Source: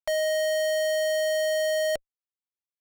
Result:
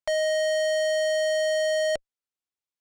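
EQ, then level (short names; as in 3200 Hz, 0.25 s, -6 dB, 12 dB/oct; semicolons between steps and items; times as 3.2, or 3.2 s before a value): polynomial smoothing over 9 samples; +1.0 dB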